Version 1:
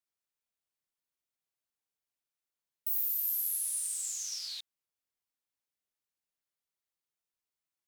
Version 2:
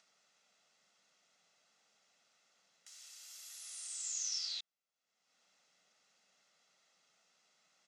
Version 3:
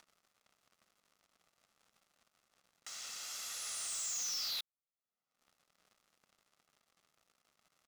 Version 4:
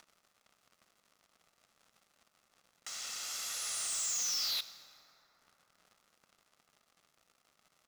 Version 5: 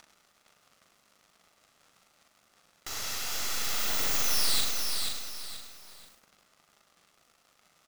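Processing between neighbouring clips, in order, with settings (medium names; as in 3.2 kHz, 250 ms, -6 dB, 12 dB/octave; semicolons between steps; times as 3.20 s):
elliptic band-pass 180–6500 Hz, stop band 50 dB; comb 1.5 ms, depth 50%; upward compressor, threshold -56 dBFS
tilt EQ -2.5 dB/octave; waveshaping leveller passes 5; peaking EQ 1.2 kHz +5.5 dB 0.37 oct; trim -2.5 dB
reverberation RT60 4.5 s, pre-delay 13 ms, DRR 11.5 dB; trim +4 dB
tracing distortion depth 0.11 ms; on a send: reverse bouncing-ball echo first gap 40 ms, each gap 1.6×, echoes 5; on the sum: bit-crushed delay 480 ms, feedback 35%, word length 9-bit, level -4.5 dB; trim +4.5 dB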